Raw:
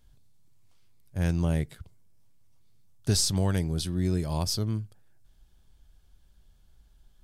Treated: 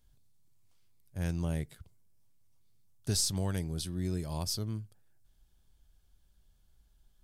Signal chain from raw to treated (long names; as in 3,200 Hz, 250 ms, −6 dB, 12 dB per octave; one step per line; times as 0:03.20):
high-shelf EQ 6,600 Hz +6 dB
level −7 dB